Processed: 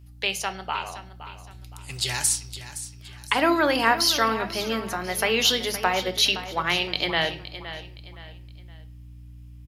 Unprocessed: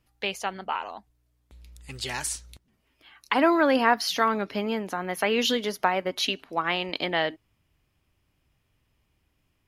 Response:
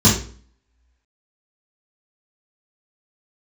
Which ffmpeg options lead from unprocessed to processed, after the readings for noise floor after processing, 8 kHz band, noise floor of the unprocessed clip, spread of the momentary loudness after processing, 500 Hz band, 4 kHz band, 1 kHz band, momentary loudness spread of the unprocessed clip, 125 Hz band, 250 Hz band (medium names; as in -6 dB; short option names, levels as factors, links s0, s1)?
-44 dBFS, +9.0 dB, -72 dBFS, 20 LU, -0.5 dB, +6.5 dB, +0.5 dB, 12 LU, +6.0 dB, -1.5 dB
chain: -filter_complex "[0:a]aeval=exprs='val(0)+0.00316*(sin(2*PI*60*n/s)+sin(2*PI*2*60*n/s)/2+sin(2*PI*3*60*n/s)/3+sin(2*PI*4*60*n/s)/4+sin(2*PI*5*60*n/s)/5)':c=same,highshelf=f=2800:g=11,aecho=1:1:517|1034|1551:0.224|0.0784|0.0274,asplit=2[s0][s1];[1:a]atrim=start_sample=2205,asetrate=33516,aresample=44100[s2];[s1][s2]afir=irnorm=-1:irlink=0,volume=0.0211[s3];[s0][s3]amix=inputs=2:normalize=0,volume=0.891"